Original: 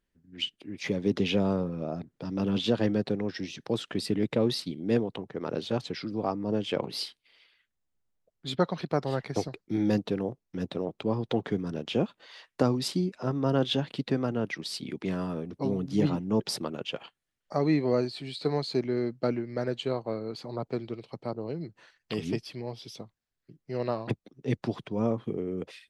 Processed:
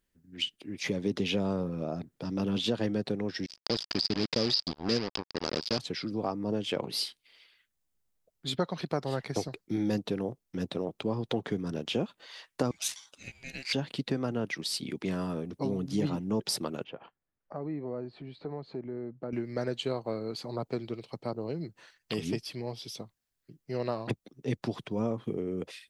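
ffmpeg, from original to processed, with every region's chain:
-filter_complex "[0:a]asettb=1/sr,asplit=3[s0][s1][s2];[s0]atrim=end=3.464[s3];[s1]atrim=start=3.46:end=5.79,asetpts=PTS-STARTPTS,afade=t=in:d=0.004:c=qsin,afade=t=out:st=2.326:d=0.004:c=qsin,acrusher=bits=4:mix=0:aa=0.5,lowpass=f=4900:t=q:w=13,acrossover=split=3700[s4][s5];[s5]acompressor=threshold=0.0355:ratio=4:attack=1:release=60[s6];[s4][s6]amix=inputs=2:normalize=0[s7];[s2]atrim=start=5.786[s8];[s3][s7]acrossfade=d=0.004:c1=hsin:c2=qsin[s9];[s9][s8]acrossfade=d=0.004:c1=qsin:c2=hsin,asettb=1/sr,asplit=3[s10][s11][s12];[s10]atrim=end=12.714[s13];[s11]atrim=start=12.71:end=13.73,asetpts=PTS-STARTPTS,afade=t=in:d=0.004:c=qsin,afade=t=out:st=1.016:d=0.004:c=qsin,highpass=f=1100:w=0.5412,highpass=f=1100:w=1.3066,equalizer=f=7800:t=o:w=0.4:g=5.5,aeval=exprs='val(0)*sin(2*PI*1200*n/s)':c=same[s14];[s12]atrim=start=13.726[s15];[s13][s14]acrossfade=d=0.004:c1=hsin:c2=qsin[s16];[s16][s15]acrossfade=d=0.004:c1=qsin:c2=hsin,asettb=1/sr,asplit=3[s17][s18][s19];[s17]atrim=end=16.844[s20];[s18]atrim=start=16.84:end=19.33,asetpts=PTS-STARTPTS,afade=t=in:d=0.004:c=qsin,afade=t=out:st=2.486:d=0.004:c=qsin,lowpass=1300,acompressor=threshold=0.00891:ratio=2:attack=3.2:release=140:knee=1:detection=peak[s21];[s19]atrim=start=19.326[s22];[s20][s21]acrossfade=d=0.004:c1=hsin:c2=qsin[s23];[s23][s22]acrossfade=d=0.004:c1=qsin:c2=hsin,highshelf=f=5800:g=8.5,acompressor=threshold=0.0398:ratio=2"

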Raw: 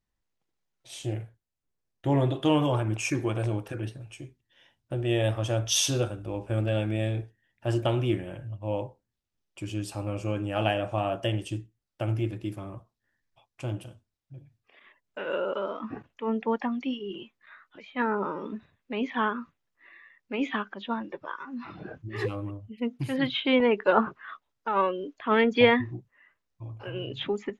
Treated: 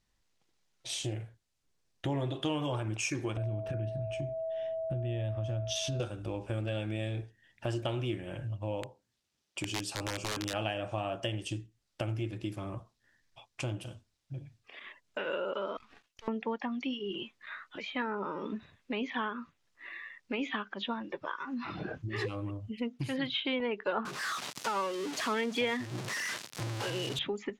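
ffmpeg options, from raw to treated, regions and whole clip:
-filter_complex "[0:a]asettb=1/sr,asplit=3[s0][s1][s2];[s0]atrim=end=3.374[s3];[s1]atrim=start=3.37:end=6,asetpts=PTS-STARTPTS,afade=t=in:d=0.004:c=qsin,afade=t=out:st=2.626:d=0.004:c=qsin,bass=f=250:g=14,treble=f=4000:g=-10,acompressor=threshold=0.0224:ratio=2.5:attack=3.2:release=140:knee=1:detection=peak,aeval=exprs='val(0)+0.02*sin(2*PI*650*n/s)':c=same[s4];[s2]atrim=start=5.996[s5];[s3][s4]acrossfade=d=0.004:c1=hsin:c2=qsin[s6];[s6][s5]acrossfade=d=0.004:c1=qsin:c2=hsin,asettb=1/sr,asplit=3[s7][s8][s9];[s7]atrim=end=8.824[s10];[s8]atrim=start=8.82:end=10.54,asetpts=PTS-STARTPTS,afade=t=in:d=0.004:c=qsin,afade=t=out:st=1.716:d=0.004:c=qsin,highpass=f=140:p=1,aeval=exprs='(mod(20*val(0)+1,2)-1)/20':c=same[s11];[s9]atrim=start=10.536[s12];[s10][s11]acrossfade=d=0.004:c1=hsin:c2=qsin[s13];[s13][s12]acrossfade=d=0.004:c1=qsin:c2=hsin,asettb=1/sr,asplit=3[s14][s15][s16];[s14]atrim=end=15.774[s17];[s15]atrim=start=15.77:end=16.28,asetpts=PTS-STARTPTS,afade=t=in:d=0.004:c=qsin,afade=t=out:st=0.506:d=0.004:c=qsin,aderivative,aeval=exprs='max(val(0),0)':c=same[s18];[s16]atrim=start=16.276[s19];[s17][s18]acrossfade=d=0.004:c1=hsin:c2=qsin[s20];[s20][s19]acrossfade=d=0.004:c1=qsin:c2=hsin,asettb=1/sr,asplit=3[s21][s22][s23];[s21]atrim=end=24.054[s24];[s22]atrim=start=24.05:end=27.19,asetpts=PTS-STARTPTS,afade=t=in:d=0.004:c=qsin,afade=t=out:st=3.136:d=0.004:c=qsin,aeval=exprs='val(0)+0.5*0.0299*sgn(val(0))':c=same,highpass=f=120:w=0.5412,highpass=f=120:w=1.3066[s25];[s23]atrim=start=27.186[s26];[s24][s25]acrossfade=d=0.004:c1=hsin:c2=qsin[s27];[s27][s26]acrossfade=d=0.004:c1=qsin:c2=hsin,lowpass=5500,aemphasis=mode=production:type=75kf,acompressor=threshold=0.00891:ratio=3,volume=1.88"

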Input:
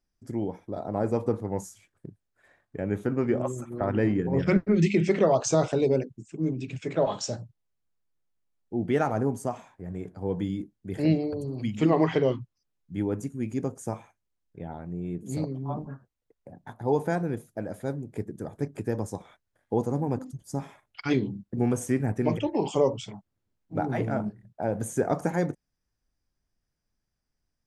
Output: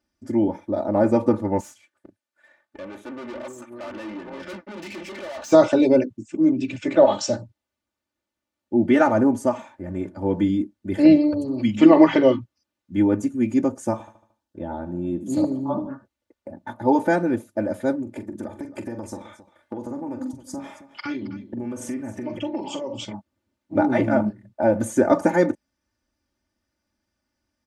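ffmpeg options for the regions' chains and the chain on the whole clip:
-filter_complex "[0:a]asettb=1/sr,asplit=3[s0][s1][s2];[s0]atrim=end=1.604[s3];[s1]atrim=start=1.6:end=5.52,asetpts=PTS-STARTPTS,afade=t=in:d=0.004:c=qsin,afade=t=out:st=3.916:d=0.004:c=qsin,highpass=f=710:p=1,aeval=exprs='(tanh(126*val(0)+0.7)-tanh(0.7))/126':c=same[s4];[s2]atrim=start=5.516[s5];[s3][s4]acrossfade=d=0.004:c1=hsin:c2=qsin[s6];[s6][s5]acrossfade=d=0.004:c1=qsin:c2=hsin,asettb=1/sr,asplit=3[s7][s8][s9];[s7]atrim=end=13.924[s10];[s8]atrim=start=13.92:end=15.89,asetpts=PTS-STARTPTS,afade=t=in:d=0.004:c=qsin,afade=t=out:st=1.966:d=0.004:c=qsin,equalizer=f=2200:t=o:w=0.4:g=-12.5,aecho=1:1:75|150|225|300|375:0.178|0.0889|0.0445|0.0222|0.0111,atrim=end_sample=86877[s11];[s9]atrim=start=15.886[s12];[s10][s11]acrossfade=d=0.004:c1=hsin:c2=qsin[s13];[s13][s12]acrossfade=d=0.004:c1=qsin:c2=hsin,asettb=1/sr,asplit=3[s14][s15][s16];[s14]atrim=end=18.024[s17];[s15]atrim=start=18.02:end=23.05,asetpts=PTS-STARTPTS,afade=t=in:d=0.004:c=qsin,afade=t=out:st=5.026:d=0.004:c=qsin,acompressor=threshold=0.0178:ratio=10:attack=3.2:release=140:knee=1:detection=peak,aecho=1:1:43|269:0.299|0.168,atrim=end_sample=221823[s18];[s16]atrim=start=23.046[s19];[s17][s18]acrossfade=d=0.004:c1=hsin:c2=qsin[s20];[s20][s19]acrossfade=d=0.004:c1=qsin:c2=hsin,highpass=92,highshelf=f=7400:g=-10.5,aecho=1:1:3.4:0.96,volume=2.11"

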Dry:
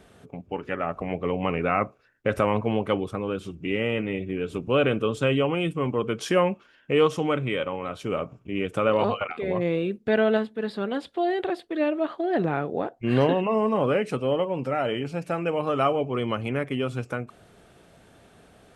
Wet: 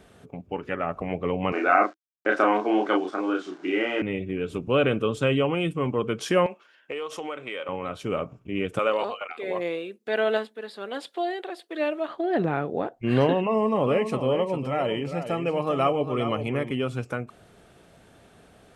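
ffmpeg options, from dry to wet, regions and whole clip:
-filter_complex "[0:a]asettb=1/sr,asplit=3[s0][s1][s2];[s0]atrim=end=1.524[s3];[s1]atrim=start=1.52:end=4.02,asetpts=PTS-STARTPTS,afade=t=in:d=0.004:c=qsin,afade=t=out:st=2.496:d=0.004:c=qsin,aeval=exprs='val(0)*gte(abs(val(0)),0.00501)':c=same,highpass=f=300:w=0.5412,highpass=f=300:w=1.3066,equalizer=f=320:t=q:w=4:g=10,equalizer=f=490:t=q:w=4:g=-7,equalizer=f=720:t=q:w=4:g=6,equalizer=f=1500:t=q:w=4:g=9,equalizer=f=2600:t=q:w=4:g=-4,lowpass=f=6900:w=0.5412,lowpass=f=6900:w=1.3066,asplit=2[s4][s5];[s5]adelay=33,volume=0.708[s6];[s4][s6]amix=inputs=2:normalize=0,atrim=end_sample=110250[s7];[s2]atrim=start=4.016[s8];[s3][s7]acrossfade=d=0.004:c1=hsin:c2=qsin[s9];[s9][s8]acrossfade=d=0.004:c1=qsin:c2=hsin,asettb=1/sr,asplit=3[s10][s11][s12];[s10]atrim=end=6.464[s13];[s11]atrim=start=6.46:end=7.69,asetpts=PTS-STARTPTS,afade=t=in:d=0.004:c=qsin,afade=t=out:st=1.226:d=0.004:c=qsin,highpass=460,acompressor=threshold=0.0398:ratio=12:attack=3.2:release=140:knee=1:detection=peak[s14];[s12]atrim=start=7.686[s15];[s13][s14]acrossfade=d=0.004:c1=hsin:c2=qsin[s16];[s16][s15]acrossfade=d=0.004:c1=qsin:c2=hsin,asettb=1/sr,asplit=3[s17][s18][s19];[s17]atrim=end=8.794[s20];[s18]atrim=start=8.79:end=12.08,asetpts=PTS-STARTPTS,afade=t=in:d=0.004:c=qsin,afade=t=out:st=3.286:d=0.004:c=qsin,highshelf=f=4700:g=8.5,tremolo=f=1.3:d=0.49,highpass=390[s21];[s19]atrim=start=12.076[s22];[s20][s21]acrossfade=d=0.004:c1=hsin:c2=qsin[s23];[s23][s22]acrossfade=d=0.004:c1=qsin:c2=hsin,asettb=1/sr,asplit=3[s24][s25][s26];[s24]atrim=end=13.464[s27];[s25]atrim=start=13.46:end=16.71,asetpts=PTS-STARTPTS,afade=t=in:d=0.004:c=qsin,afade=t=out:st=3.246:d=0.004:c=qsin,bandreject=f=1500:w=6,aecho=1:1:403:0.335,atrim=end_sample=143325[s28];[s26]atrim=start=16.706[s29];[s27][s28]acrossfade=d=0.004:c1=hsin:c2=qsin[s30];[s30][s29]acrossfade=d=0.004:c1=qsin:c2=hsin"

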